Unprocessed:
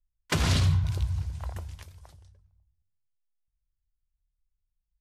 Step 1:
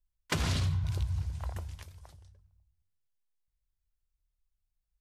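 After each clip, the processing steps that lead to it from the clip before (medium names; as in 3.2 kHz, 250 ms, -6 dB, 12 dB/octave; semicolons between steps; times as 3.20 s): compression, threshold -25 dBFS, peak gain reduction 7 dB; trim -1.5 dB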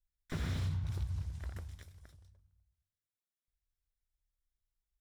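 comb filter that takes the minimum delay 0.54 ms; slew-rate limiter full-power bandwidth 26 Hz; trim -5 dB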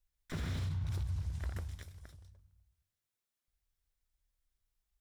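peak limiter -34 dBFS, peak gain reduction 7.5 dB; trim +4 dB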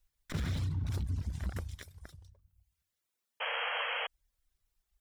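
reverb removal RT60 0.89 s; painted sound noise, 3.40–4.07 s, 450–3300 Hz -41 dBFS; transformer saturation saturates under 120 Hz; trim +6 dB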